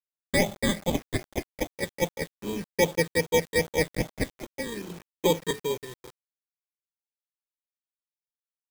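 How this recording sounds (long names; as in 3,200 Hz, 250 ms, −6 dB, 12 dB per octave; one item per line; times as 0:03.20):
aliases and images of a low sample rate 1,400 Hz, jitter 0%
phaser sweep stages 8, 2.5 Hz, lowest notch 730–1,700 Hz
a quantiser's noise floor 8 bits, dither none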